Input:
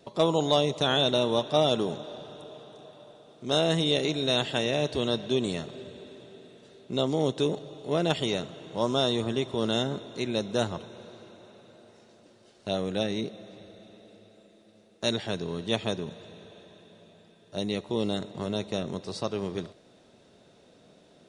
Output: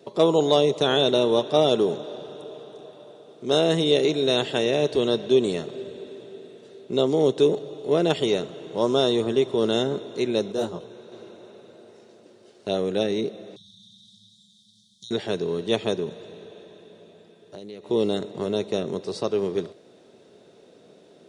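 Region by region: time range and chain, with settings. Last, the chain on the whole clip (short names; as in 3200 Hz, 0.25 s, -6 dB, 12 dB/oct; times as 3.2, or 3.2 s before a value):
10.52–11.12 hard clip -14.5 dBFS + dynamic EQ 2000 Hz, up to -7 dB, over -47 dBFS, Q 1.3 + detuned doubles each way 23 cents
13.56–15.11 brick-wall FIR band-stop 210–3100 Hz + bell 4600 Hz +10.5 dB 2.9 oct + compressor 3:1, threshold -49 dBFS
16.33–17.86 compressor 12:1, threshold -39 dBFS + Doppler distortion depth 0.1 ms
whole clip: HPF 110 Hz; bell 410 Hz +8.5 dB 0.66 oct; gain +1.5 dB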